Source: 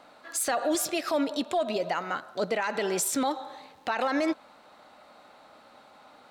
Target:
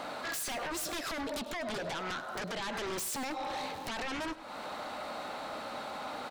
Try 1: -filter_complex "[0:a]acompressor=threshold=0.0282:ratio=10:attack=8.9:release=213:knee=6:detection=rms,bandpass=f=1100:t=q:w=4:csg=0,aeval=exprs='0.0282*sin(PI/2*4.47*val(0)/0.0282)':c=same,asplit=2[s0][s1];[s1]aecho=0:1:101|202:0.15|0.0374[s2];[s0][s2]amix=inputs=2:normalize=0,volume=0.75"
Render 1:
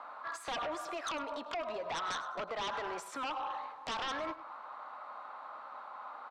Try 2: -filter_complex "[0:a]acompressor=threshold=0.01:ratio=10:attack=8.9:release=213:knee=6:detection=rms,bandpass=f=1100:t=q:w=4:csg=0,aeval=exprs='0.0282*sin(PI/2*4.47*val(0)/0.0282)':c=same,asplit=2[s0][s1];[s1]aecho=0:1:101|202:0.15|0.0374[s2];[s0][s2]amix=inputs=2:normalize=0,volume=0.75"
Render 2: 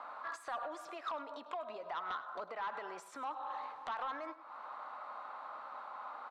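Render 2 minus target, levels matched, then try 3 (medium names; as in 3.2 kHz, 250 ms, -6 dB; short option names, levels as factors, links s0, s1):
1 kHz band +4.5 dB
-filter_complex "[0:a]acompressor=threshold=0.01:ratio=10:attack=8.9:release=213:knee=6:detection=rms,aeval=exprs='0.0282*sin(PI/2*4.47*val(0)/0.0282)':c=same,asplit=2[s0][s1];[s1]aecho=0:1:101|202:0.15|0.0374[s2];[s0][s2]amix=inputs=2:normalize=0,volume=0.75"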